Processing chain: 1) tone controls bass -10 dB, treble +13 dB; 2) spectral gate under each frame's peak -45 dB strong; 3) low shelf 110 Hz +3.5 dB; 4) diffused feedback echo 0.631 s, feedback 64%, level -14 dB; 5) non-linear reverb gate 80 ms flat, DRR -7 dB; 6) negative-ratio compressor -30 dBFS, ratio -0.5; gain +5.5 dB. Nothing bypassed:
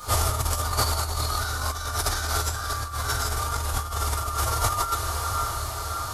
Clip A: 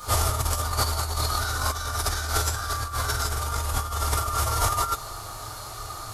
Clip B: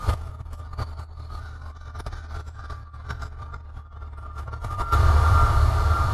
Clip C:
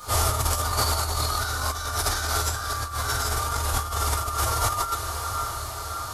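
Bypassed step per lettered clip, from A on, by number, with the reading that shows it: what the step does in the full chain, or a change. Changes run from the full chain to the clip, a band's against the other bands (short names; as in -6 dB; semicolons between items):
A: 4, momentary loudness spread change +8 LU; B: 1, 8 kHz band -17.0 dB; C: 3, 125 Hz band -1.5 dB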